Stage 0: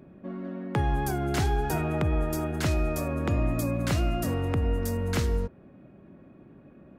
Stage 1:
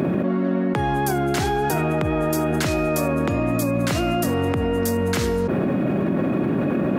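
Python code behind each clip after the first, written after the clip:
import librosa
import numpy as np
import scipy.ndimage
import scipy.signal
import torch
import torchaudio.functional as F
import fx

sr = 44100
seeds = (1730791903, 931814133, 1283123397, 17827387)

y = scipy.signal.sosfilt(scipy.signal.butter(2, 140.0, 'highpass', fs=sr, output='sos'), x)
y = fx.env_flatten(y, sr, amount_pct=100)
y = F.gain(torch.from_numpy(y), 3.5).numpy()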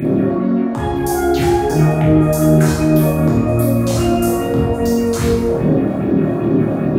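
y = fx.phaser_stages(x, sr, stages=4, low_hz=250.0, high_hz=2800.0, hz=2.5, feedback_pct=40)
y = fx.room_early_taps(y, sr, ms=(26, 52), db=(-4.5, -5.0))
y = fx.rev_plate(y, sr, seeds[0], rt60_s=1.2, hf_ratio=0.6, predelay_ms=0, drr_db=-4.0)
y = F.gain(torch.from_numpy(y), -1.0).numpy()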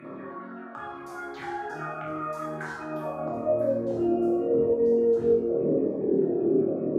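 y = fx.filter_sweep_bandpass(x, sr, from_hz=1300.0, to_hz=430.0, start_s=2.76, end_s=3.93, q=4.0)
y = y + 10.0 ** (-18.0 / 20.0) * np.pad(y, (int(1007 * sr / 1000.0), 0))[:len(y)]
y = fx.notch_cascade(y, sr, direction='falling', hz=0.87)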